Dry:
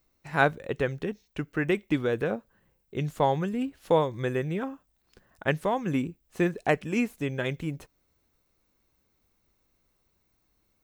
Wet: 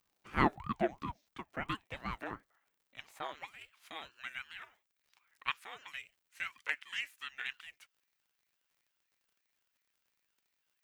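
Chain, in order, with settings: high-pass sweep 510 Hz -> 2000 Hz, 1.38–3.76; crackle 90/s -54 dBFS; ring modulator with a swept carrier 420 Hz, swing 65%, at 2.9 Hz; gain -6.5 dB

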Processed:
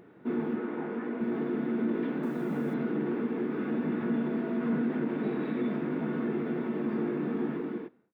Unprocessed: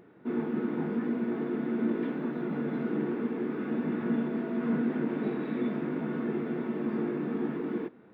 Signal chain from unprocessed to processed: ending faded out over 0.66 s; 0.56–1.21 tone controls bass -13 dB, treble -12 dB; in parallel at +2 dB: limiter -25.5 dBFS, peak gain reduction 7.5 dB; 2.23–2.74 on the sum: requantised 10-bit, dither triangular; gain -5.5 dB

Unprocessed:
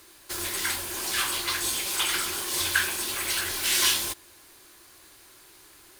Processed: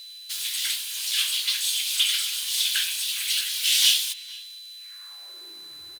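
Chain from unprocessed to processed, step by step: outdoor echo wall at 79 m, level -18 dB; high-pass sweep 3200 Hz -> 72 Hz, 4.75–5.92; whine 4000 Hz -40 dBFS

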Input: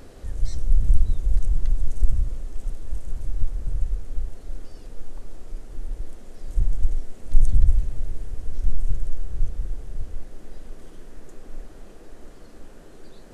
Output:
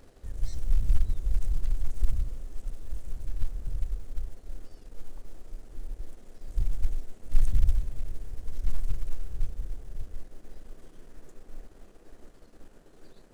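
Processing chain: G.711 law mismatch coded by A; gain -6 dB

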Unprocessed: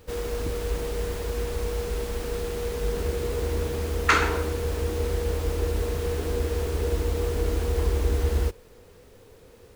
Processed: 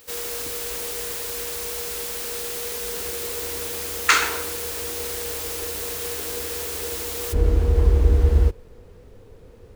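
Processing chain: tilt +4 dB/oct, from 7.32 s -2 dB/oct

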